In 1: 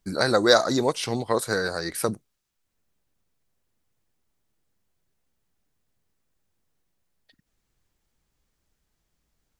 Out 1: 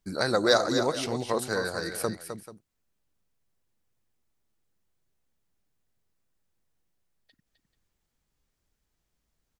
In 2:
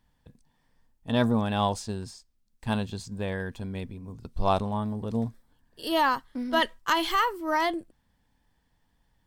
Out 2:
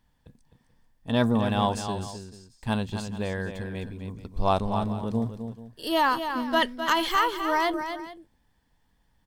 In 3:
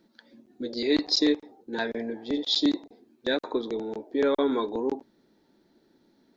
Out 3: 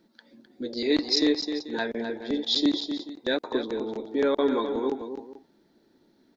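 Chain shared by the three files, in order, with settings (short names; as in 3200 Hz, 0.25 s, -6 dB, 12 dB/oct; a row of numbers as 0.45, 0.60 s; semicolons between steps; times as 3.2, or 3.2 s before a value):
tapped delay 0.258/0.436 s -8.5/-17 dB; match loudness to -27 LUFS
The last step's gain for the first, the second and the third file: -4.5, +1.0, 0.0 dB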